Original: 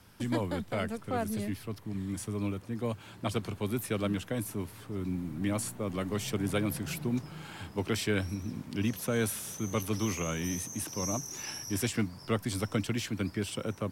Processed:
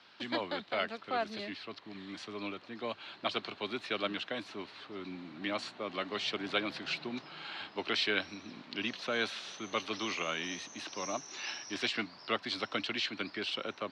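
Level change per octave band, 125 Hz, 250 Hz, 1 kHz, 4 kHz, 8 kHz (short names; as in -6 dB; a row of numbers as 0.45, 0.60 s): -19.5, -8.5, +1.5, +5.5, -11.0 dB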